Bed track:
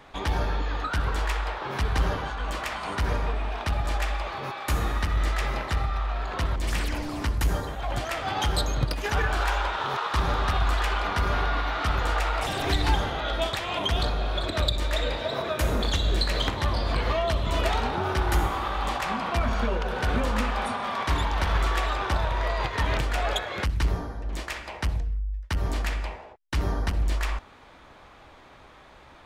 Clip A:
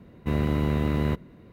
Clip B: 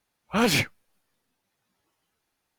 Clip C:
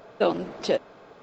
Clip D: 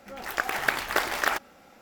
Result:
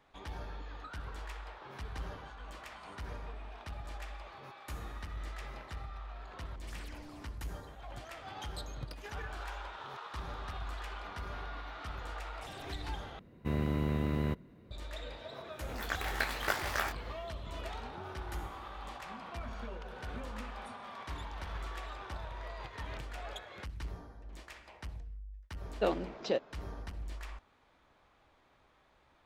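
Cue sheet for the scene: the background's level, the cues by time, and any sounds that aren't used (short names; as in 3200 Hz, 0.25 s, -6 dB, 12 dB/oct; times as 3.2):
bed track -17 dB
13.19 replace with A -7.5 dB
15.52 add D -4.5 dB + detuned doubles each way 34 cents
25.61 add C -8 dB + LPF 6400 Hz
not used: B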